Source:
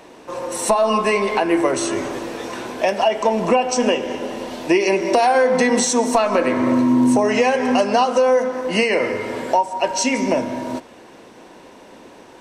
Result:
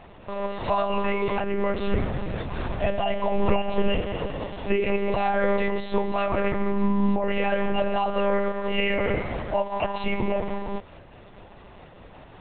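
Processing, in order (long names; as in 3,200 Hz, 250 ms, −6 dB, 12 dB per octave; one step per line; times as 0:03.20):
hum removal 74.22 Hz, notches 8
brickwall limiter −13 dBFS, peak gain reduction 8.5 dB
one-pitch LPC vocoder at 8 kHz 200 Hz
0:01.87–0:04.01: low-shelf EQ 190 Hz +6.5 dB
amplitude modulation by smooth noise, depth 50%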